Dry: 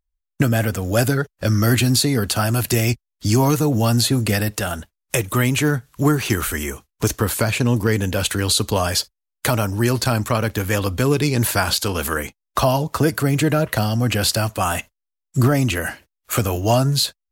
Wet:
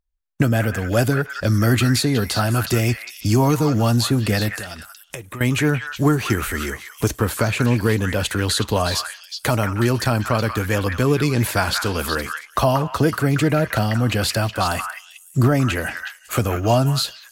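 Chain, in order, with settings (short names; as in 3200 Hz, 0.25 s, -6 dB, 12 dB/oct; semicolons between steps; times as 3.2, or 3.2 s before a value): high shelf 4100 Hz -6 dB; 4.49–5.41 compressor 8:1, threshold -31 dBFS, peak gain reduction 16.5 dB; on a send: delay with a stepping band-pass 0.184 s, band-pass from 1600 Hz, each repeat 1.4 oct, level -2.5 dB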